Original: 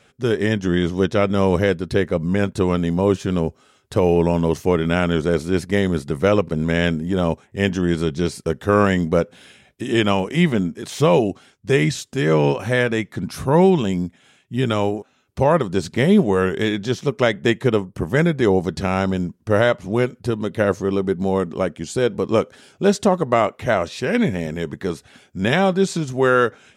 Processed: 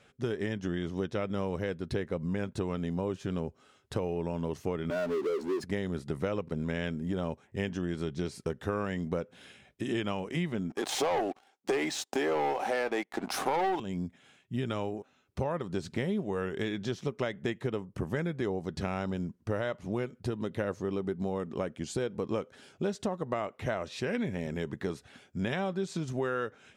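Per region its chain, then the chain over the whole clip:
4.90–5.64 s: spectral contrast enhancement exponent 2.2 + high-pass 310 Hz 24 dB/octave + power-law waveshaper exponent 0.5
10.70–13.80 s: high-pass 280 Hz 24 dB/octave + peaking EQ 790 Hz +15 dB 0.4 oct + waveshaping leveller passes 3
whole clip: treble shelf 6.2 kHz -5.5 dB; compression, threshold -23 dBFS; trim -6 dB

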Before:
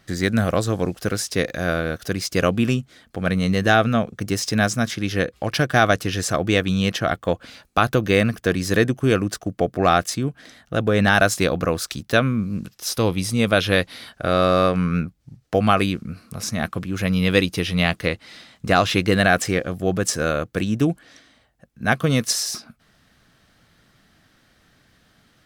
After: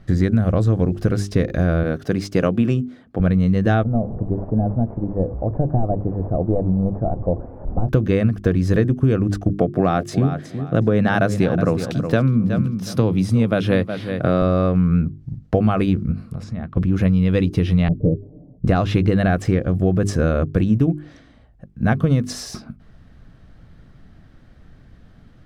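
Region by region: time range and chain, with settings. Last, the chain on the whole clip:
1.83–3.20 s: high-pass 120 Hz + bass shelf 180 Hz -6 dB + tape noise reduction on one side only decoder only
3.83–7.89 s: one-bit delta coder 16 kbps, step -26.5 dBFS + four-pole ladder low-pass 810 Hz, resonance 40%
9.49–14.42 s: high-pass 110 Hz 24 dB/octave + feedback delay 367 ms, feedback 21%, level -13 dB
16.12–16.77 s: low-pass that closes with the level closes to 3 kHz, closed at -20 dBFS + band-stop 6 kHz, Q 7.6 + compression 3:1, threshold -38 dBFS
17.88–18.65 s: steep low-pass 590 Hz + comb 6.8 ms, depth 73%
whole clip: tilt EQ -4 dB/octave; hum notches 50/100/150/200/250/300/350/400 Hz; compression, threshold -15 dBFS; trim +2 dB

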